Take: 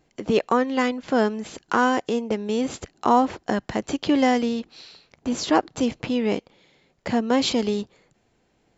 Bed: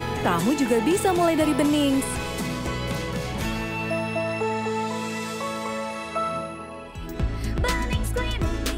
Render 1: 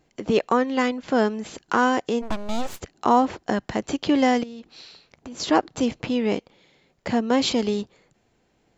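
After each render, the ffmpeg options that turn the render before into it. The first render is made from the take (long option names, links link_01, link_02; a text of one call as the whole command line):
ffmpeg -i in.wav -filter_complex "[0:a]asplit=3[link_01][link_02][link_03];[link_01]afade=type=out:start_time=2.21:duration=0.02[link_04];[link_02]aeval=exprs='abs(val(0))':channel_layout=same,afade=type=in:start_time=2.21:duration=0.02,afade=type=out:start_time=2.79:duration=0.02[link_05];[link_03]afade=type=in:start_time=2.79:duration=0.02[link_06];[link_04][link_05][link_06]amix=inputs=3:normalize=0,asettb=1/sr,asplit=3[link_07][link_08][link_09];[link_07]atrim=end=4.434[link_10];[link_08]atrim=start=4.43:end=5.4,asetpts=PTS-STARTPTS,afade=type=in:duration=0.004:curve=qsin,afade=type=out:start_time=0.966:duration=0.004:curve=qsin,acompressor=threshold=-35dB:ratio=8:attack=3.2:release=140:knee=1:detection=peak[link_11];[link_09]atrim=start=5.396[link_12];[link_10][link_11]acrossfade=duration=0.004:curve1=hsin:curve2=qsin[link_13];[link_13][link_12]acrossfade=duration=0.004:curve1=qsin:curve2=hsin" out.wav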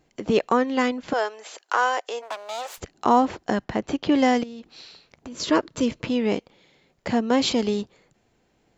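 ffmpeg -i in.wav -filter_complex "[0:a]asettb=1/sr,asplit=3[link_01][link_02][link_03];[link_01]atrim=end=1.134[link_04];[link_02]atrim=start=1.13:end=2.78,asetpts=PTS-STARTPTS,afade=type=in:duration=0.004:curve=qsin,afade=type=out:start_time=1.646:duration=0.004:curve=qsin,highpass=frequency=520:width=0.5412,highpass=frequency=520:width=1.3066[link_05];[link_03]atrim=start=2.776[link_06];[link_04][link_05]acrossfade=duration=0.004:curve1=hsin:curve2=qsin[link_07];[link_07][link_06]acrossfade=duration=0.004:curve1=qsin:curve2=hsin,asettb=1/sr,asplit=3[link_08][link_09][link_10];[link_08]atrim=end=3.644[link_11];[link_09]atrim=start=3.64:end=4.12,asetpts=PTS-STARTPTS,afade=type=in:duration=0.004:curve=qsin,afade=type=out:start_time=0.476:duration=0.004:curve=qsin,aemphasis=mode=reproduction:type=50fm[link_12];[link_10]atrim=start=4.116[link_13];[link_11][link_12]acrossfade=duration=0.004:curve1=hsin:curve2=qsin[link_14];[link_14][link_13]acrossfade=duration=0.004:curve1=qsin:curve2=hsin,asettb=1/sr,asplit=3[link_15][link_16][link_17];[link_15]atrim=end=5.314[link_18];[link_16]atrim=start=5.31:end=6.08,asetpts=PTS-STARTPTS,afade=type=in:duration=0.004:curve=qsin,afade=type=out:start_time=0.766:duration=0.004:curve=qsin,asuperstop=centerf=770:order=4:qfactor=4.4[link_19];[link_17]atrim=start=6.076[link_20];[link_18][link_19]acrossfade=duration=0.004:curve1=hsin:curve2=qsin[link_21];[link_21][link_20]acrossfade=duration=0.004:curve1=qsin:curve2=hsin" out.wav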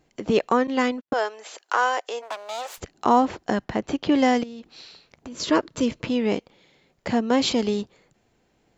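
ffmpeg -i in.wav -filter_complex "[0:a]asettb=1/sr,asplit=3[link_01][link_02][link_03];[link_01]atrim=end=0.674[link_04];[link_02]atrim=start=0.67:end=1.13,asetpts=PTS-STARTPTS,afade=type=in:duration=0.004:curve=qsin,afade=type=out:start_time=0.456:duration=0.004:curve=qsin,agate=range=-57dB:threshold=-32dB:ratio=16:release=100:detection=peak[link_05];[link_03]atrim=start=1.126[link_06];[link_04][link_05]acrossfade=duration=0.004:curve1=hsin:curve2=qsin[link_07];[link_07][link_06]acrossfade=duration=0.004:curve1=qsin:curve2=hsin" out.wav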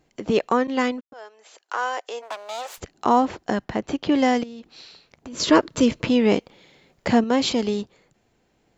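ffmpeg -i in.wav -filter_complex "[0:a]asettb=1/sr,asplit=3[link_01][link_02][link_03];[link_01]atrim=end=5.334[link_04];[link_02]atrim=start=5.33:end=7.24,asetpts=PTS-STARTPTS,afade=type=in:duration=0.004:curve=qsin,afade=type=out:start_time=1.906:duration=0.004:curve=qsin,acontrast=29[link_05];[link_03]atrim=start=7.236[link_06];[link_04][link_05]acrossfade=duration=0.004:curve1=hsin:curve2=qsin[link_07];[link_07][link_06]acrossfade=duration=0.004:curve1=qsin:curve2=hsin,asplit=2[link_08][link_09];[link_08]atrim=end=1.01,asetpts=PTS-STARTPTS,afade=type=out:start_time=1.006:duration=0.004:curve=hsin[link_10];[link_09]atrim=start=1.01,asetpts=PTS-STARTPTS,afade=type=in:duration=1.35[link_11];[link_10][link_11]concat=n=2:v=0:a=1" out.wav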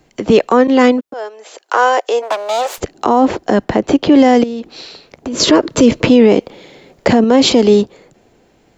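ffmpeg -i in.wav -filter_complex "[0:a]acrossover=split=280|650|2200[link_01][link_02][link_03][link_04];[link_02]dynaudnorm=framelen=210:gausssize=5:maxgain=8.5dB[link_05];[link_01][link_05][link_03][link_04]amix=inputs=4:normalize=0,alimiter=level_in=11.5dB:limit=-1dB:release=50:level=0:latency=1" out.wav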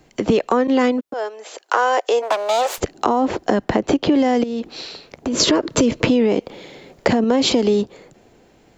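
ffmpeg -i in.wav -af "acompressor=threshold=-13dB:ratio=6" out.wav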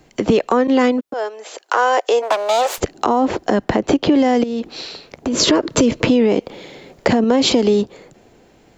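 ffmpeg -i in.wav -af "volume=2dB,alimiter=limit=-3dB:level=0:latency=1" out.wav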